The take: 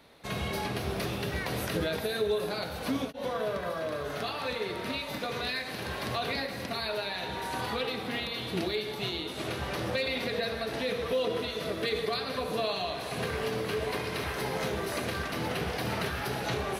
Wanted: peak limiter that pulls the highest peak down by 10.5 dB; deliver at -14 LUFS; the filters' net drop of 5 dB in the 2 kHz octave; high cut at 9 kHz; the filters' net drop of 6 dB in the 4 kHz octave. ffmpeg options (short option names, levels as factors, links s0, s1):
-af "lowpass=9000,equalizer=f=2000:t=o:g=-5,equalizer=f=4000:t=o:g=-5.5,volume=16.8,alimiter=limit=0.531:level=0:latency=1"